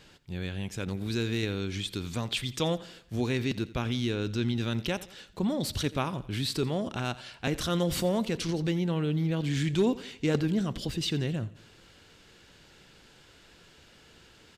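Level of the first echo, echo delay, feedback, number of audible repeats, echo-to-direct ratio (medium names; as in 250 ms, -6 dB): -18.5 dB, 86 ms, 46%, 3, -17.5 dB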